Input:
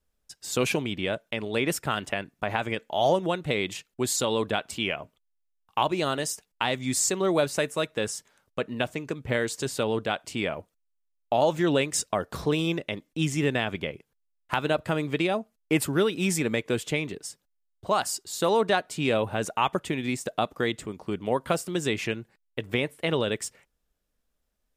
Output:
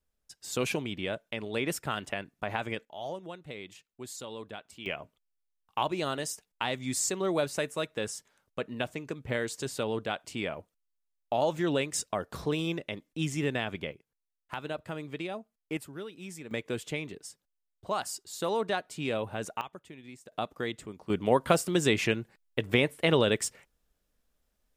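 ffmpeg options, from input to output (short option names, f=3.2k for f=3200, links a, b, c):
-af "asetnsamples=n=441:p=0,asendcmd='2.85 volume volume -15.5dB;4.86 volume volume -5dB;13.93 volume volume -11dB;15.77 volume volume -17.5dB;16.51 volume volume -7dB;19.61 volume volume -19dB;20.32 volume volume -7dB;21.1 volume volume 2dB',volume=-5dB"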